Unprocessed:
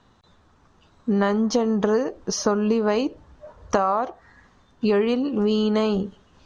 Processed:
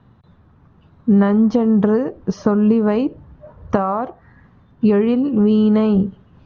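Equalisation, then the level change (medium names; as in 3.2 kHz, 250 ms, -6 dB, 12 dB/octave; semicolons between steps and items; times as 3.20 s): low-pass 2.6 kHz 12 dB/octave; peaking EQ 130 Hz +14 dB 1.9 oct; 0.0 dB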